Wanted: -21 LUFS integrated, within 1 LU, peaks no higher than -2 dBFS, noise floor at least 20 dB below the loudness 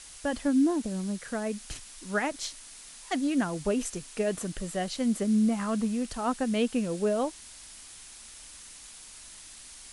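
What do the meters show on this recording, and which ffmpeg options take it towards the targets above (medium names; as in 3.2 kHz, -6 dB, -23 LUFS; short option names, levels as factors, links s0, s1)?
noise floor -48 dBFS; noise floor target -50 dBFS; loudness -29.5 LUFS; peak level -16.0 dBFS; loudness target -21.0 LUFS
-> -af "afftdn=nr=6:nf=-48"
-af "volume=2.66"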